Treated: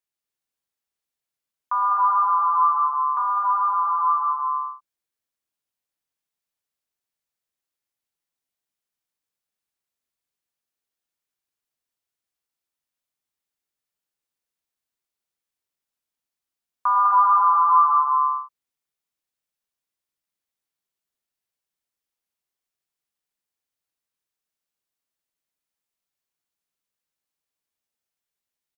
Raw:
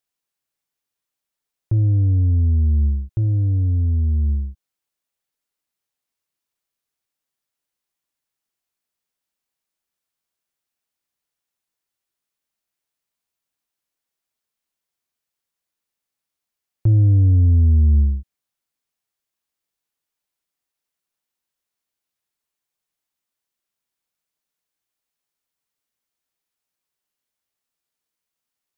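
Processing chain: ring modulator 1100 Hz; loudspeakers at several distances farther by 37 m -9 dB, 68 m -7 dB, 88 m -4 dB; gain -3 dB

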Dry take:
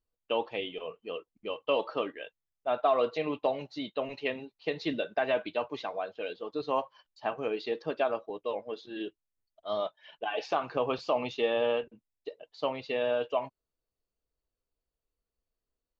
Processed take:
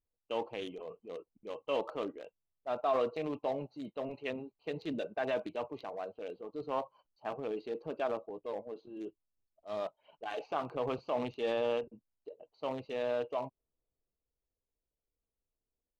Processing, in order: Wiener smoothing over 25 samples; transient shaper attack -4 dB, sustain +5 dB; gain -3.5 dB

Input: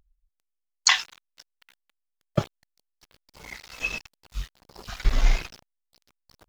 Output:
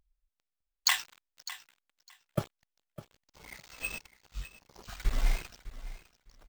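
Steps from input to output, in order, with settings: on a send: feedback echo 0.605 s, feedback 17%, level -15.5 dB; on the sum: careless resampling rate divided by 4×, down none, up hold; gain -7.5 dB

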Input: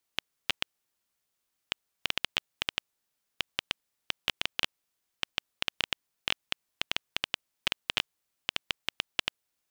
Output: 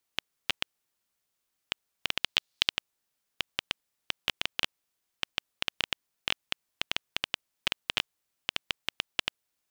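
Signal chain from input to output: 2.18–2.68 bell 4300 Hz +2.5 dB -> +14 dB 1.2 oct

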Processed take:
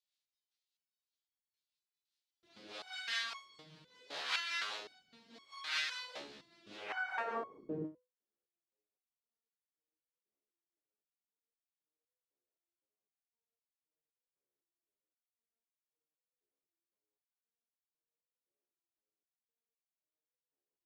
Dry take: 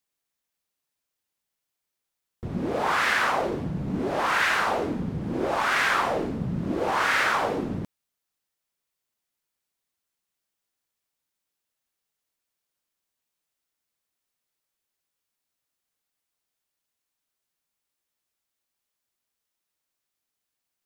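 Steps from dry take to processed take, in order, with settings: rotary speaker horn 5 Hz; on a send at -22 dB: tilt -3 dB/oct + reverb, pre-delay 3 ms; on the sum: band-pass sweep 4000 Hz -> 410 Hz, 6.73–7.34; stepped resonator 3.9 Hz 71–1100 Hz; gain +12.5 dB

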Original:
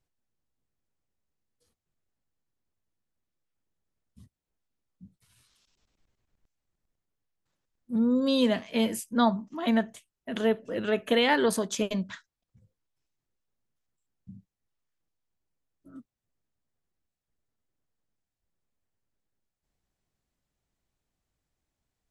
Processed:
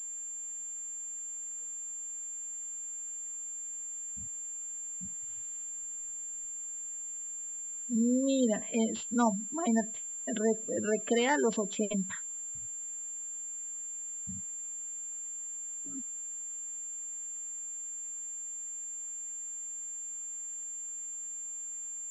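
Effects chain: spectral gate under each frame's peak -20 dB strong; in parallel at +2.5 dB: compressor 20:1, threshold -35 dBFS, peak gain reduction 18 dB; on the sum: requantised 10-bit, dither triangular; pulse-width modulation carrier 7300 Hz; gain -5.5 dB

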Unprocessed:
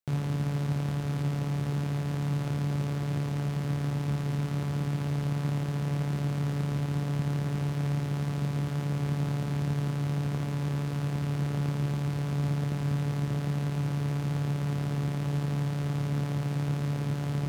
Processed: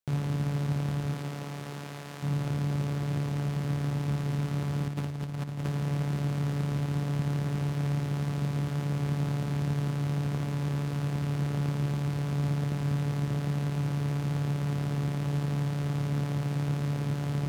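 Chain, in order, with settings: 1.13–2.22 HPF 260 Hz -> 860 Hz 6 dB/oct; 4.88–5.68 negative-ratio compressor -32 dBFS, ratio -0.5

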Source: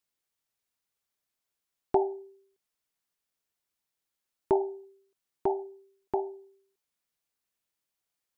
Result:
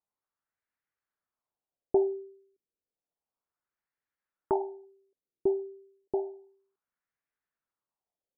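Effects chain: LFO low-pass sine 0.31 Hz 360–1800 Hz; gain -4.5 dB

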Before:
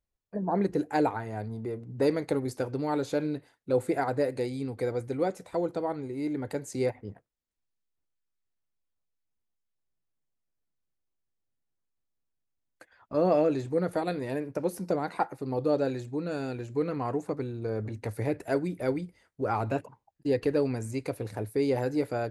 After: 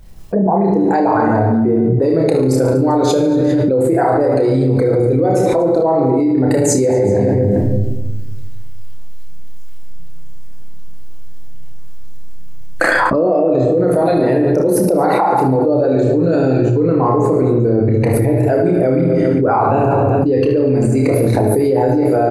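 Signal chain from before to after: formant sharpening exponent 1.5; notch 2100 Hz, Q 30; doubler 31 ms -6.5 dB; on a send: reverse bouncing-ball echo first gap 30 ms, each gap 1.5×, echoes 5; on the sum: shoebox room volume 460 m³, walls mixed, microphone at 0.69 m; fast leveller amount 100%; gain +4.5 dB

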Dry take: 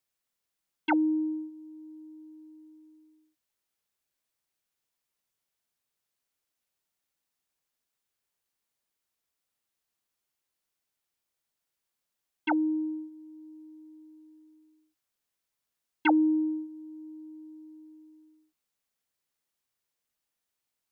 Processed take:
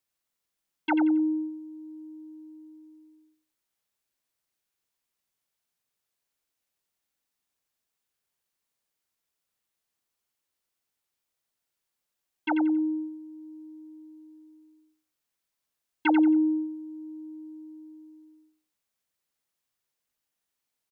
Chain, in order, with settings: feedback echo 90 ms, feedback 23%, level -7.5 dB

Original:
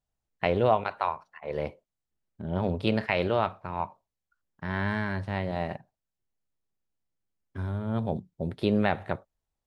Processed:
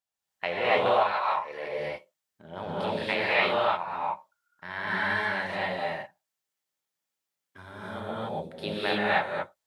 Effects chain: HPF 1300 Hz 6 dB/oct; 2.57–3.03 negative-ratio compressor -39 dBFS; non-linear reverb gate 0.32 s rising, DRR -8 dB

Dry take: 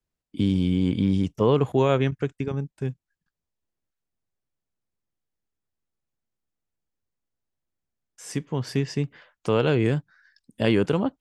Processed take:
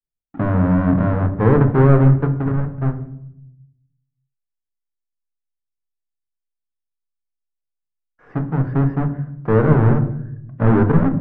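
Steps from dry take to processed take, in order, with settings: half-waves squared off; Chebyshev low-pass 1500 Hz, order 3; gate with hold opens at -52 dBFS; on a send: low shelf 420 Hz +11.5 dB + reverb RT60 0.75 s, pre-delay 6 ms, DRR 7 dB

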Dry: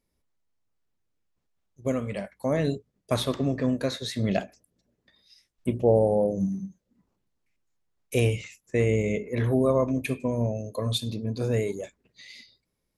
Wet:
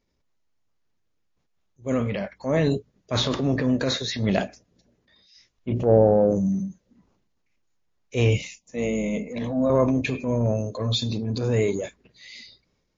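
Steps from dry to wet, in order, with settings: 8.37–9.7 fixed phaser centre 390 Hz, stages 6; transient shaper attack -9 dB, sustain +5 dB; gain +5 dB; MP3 32 kbps 16000 Hz

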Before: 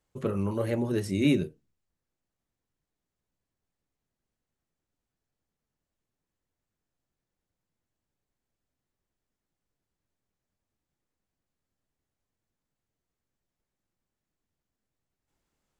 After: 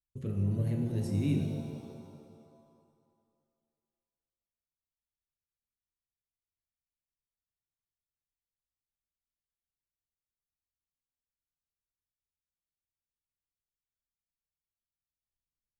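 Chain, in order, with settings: in parallel at -0.5 dB: limiter -25 dBFS, peak gain reduction 11.5 dB; on the sum: gate -46 dBFS, range -20 dB; passive tone stack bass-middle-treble 10-0-1; shimmer reverb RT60 2.1 s, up +7 st, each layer -8 dB, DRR 3.5 dB; gain +6.5 dB

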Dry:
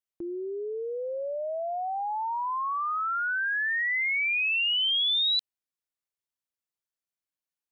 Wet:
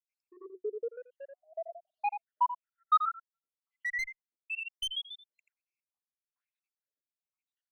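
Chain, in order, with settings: random spectral dropouts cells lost 81%; in parallel at -6 dB: soft clip -31 dBFS, distortion -11 dB; on the sum: low shelf 350 Hz -2.5 dB; notch 370 Hz, Q 12; echo 84 ms -11 dB; wah 1.1 Hz 310–3000 Hz, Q 2.7; one-sided clip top -32 dBFS, bottom -26 dBFS; limiter -37 dBFS, peak gain reduction 11 dB; 1.87–3.09 band shelf 1600 Hz +13 dB 2.5 oct; gain +8.5 dB

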